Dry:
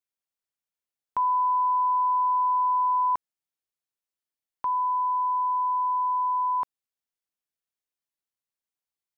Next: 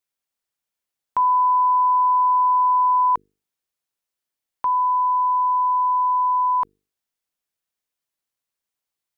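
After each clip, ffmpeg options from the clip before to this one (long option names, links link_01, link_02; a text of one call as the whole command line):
ffmpeg -i in.wav -af "bandreject=frequency=50:width_type=h:width=6,bandreject=frequency=100:width_type=h:width=6,bandreject=frequency=150:width_type=h:width=6,bandreject=frequency=200:width_type=h:width=6,bandreject=frequency=250:width_type=h:width=6,bandreject=frequency=300:width_type=h:width=6,bandreject=frequency=350:width_type=h:width=6,bandreject=frequency=400:width_type=h:width=6,bandreject=frequency=450:width_type=h:width=6,volume=6dB" out.wav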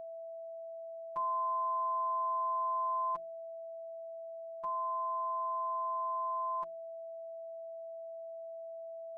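ffmpeg -i in.wav -af "afftfilt=real='hypot(re,im)*cos(PI*b)':imag='0':win_size=1024:overlap=0.75,equalizer=frequency=1200:width=0.34:gain=-5.5,aeval=exprs='val(0)+0.02*sin(2*PI*660*n/s)':channel_layout=same,volume=-8dB" out.wav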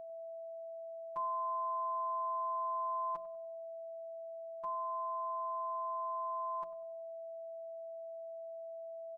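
ffmpeg -i in.wav -filter_complex "[0:a]asplit=2[link_01][link_02];[link_02]adelay=97,lowpass=frequency=1200:poles=1,volume=-14dB,asplit=2[link_03][link_04];[link_04]adelay=97,lowpass=frequency=1200:poles=1,volume=0.48,asplit=2[link_05][link_06];[link_06]adelay=97,lowpass=frequency=1200:poles=1,volume=0.48,asplit=2[link_07][link_08];[link_08]adelay=97,lowpass=frequency=1200:poles=1,volume=0.48,asplit=2[link_09][link_10];[link_10]adelay=97,lowpass=frequency=1200:poles=1,volume=0.48[link_11];[link_01][link_03][link_05][link_07][link_09][link_11]amix=inputs=6:normalize=0,volume=-2.5dB" out.wav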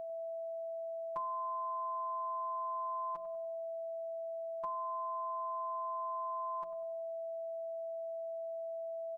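ffmpeg -i in.wav -af "acompressor=threshold=-41dB:ratio=6,volume=5dB" out.wav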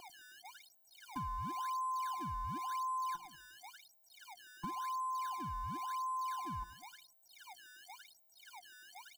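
ffmpeg -i in.wav -filter_complex "[0:a]asplit=2[link_01][link_02];[link_02]acrusher=samples=23:mix=1:aa=0.000001:lfo=1:lforange=36.8:lforate=0.94,volume=-4dB[link_03];[link_01][link_03]amix=inputs=2:normalize=0,afftfilt=real='re*eq(mod(floor(b*sr/1024/350),2),0)':imag='im*eq(mod(floor(b*sr/1024/350),2),0)':win_size=1024:overlap=0.75,volume=-2dB" out.wav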